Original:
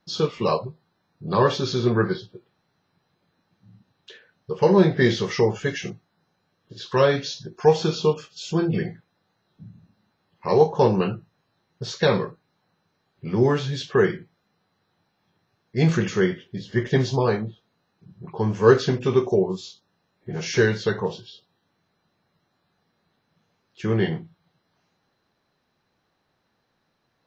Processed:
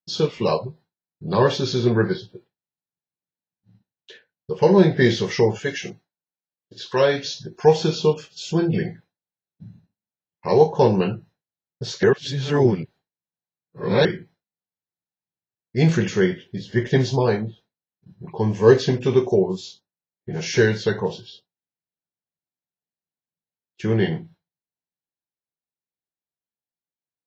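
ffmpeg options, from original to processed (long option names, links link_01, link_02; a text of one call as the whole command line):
ffmpeg -i in.wav -filter_complex "[0:a]asettb=1/sr,asplit=3[link_01][link_02][link_03];[link_01]atrim=end=5.594[link_04];[link_02]atrim=start=5.59:end=7.25,asetpts=PTS-STARTPTS,afade=type=in:duration=0.004:curve=qsin,afade=type=out:start_time=1.656:duration=0.004:curve=qsin,lowshelf=frequency=170:gain=-10.5[link_05];[link_03]atrim=start=7.246[link_06];[link_04][link_05]acrossfade=duration=0.004:curve1=hsin:curve2=qsin[link_07];[link_07][link_06]acrossfade=duration=0.004:curve1=qsin:curve2=hsin,asettb=1/sr,asplit=3[link_08][link_09][link_10];[link_08]atrim=end=18.284[link_11];[link_09]atrim=start=18.28:end=18.95,asetpts=PTS-STARTPTS,afade=type=in:duration=0.004:curve=qsin,afade=type=out:start_time=0.666:duration=0.004:curve=qsin,asuperstop=centerf=1400:order=4:qfactor=5[link_12];[link_10]atrim=start=18.946[link_13];[link_11][link_12]acrossfade=duration=0.004:curve1=hsin:curve2=qsin[link_14];[link_14][link_13]acrossfade=duration=0.004:curve1=qsin:curve2=hsin,asplit=3[link_15][link_16][link_17];[link_15]atrim=end=12.032[link_18];[link_16]atrim=start=12.028:end=14.052,asetpts=PTS-STARTPTS,areverse[link_19];[link_17]atrim=start=14.048[link_20];[link_18][link_19]acrossfade=duration=0.004:curve1=hsin:curve2=hsin[link_21];[link_21][link_20]acrossfade=duration=0.004:curve1=hsin:curve2=hsin,agate=range=-33dB:threshold=-44dB:ratio=3:detection=peak,equalizer=frequency=1200:width_type=o:width=0.26:gain=-9.5,volume=2dB" out.wav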